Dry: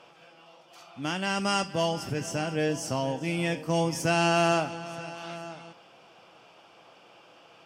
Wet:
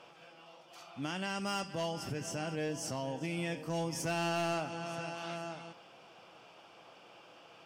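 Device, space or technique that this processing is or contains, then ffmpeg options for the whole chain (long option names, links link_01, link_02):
clipper into limiter: -af "asoftclip=type=hard:threshold=-19.5dB,alimiter=level_in=2.5dB:limit=-24dB:level=0:latency=1:release=204,volume=-2.5dB,volume=-2dB"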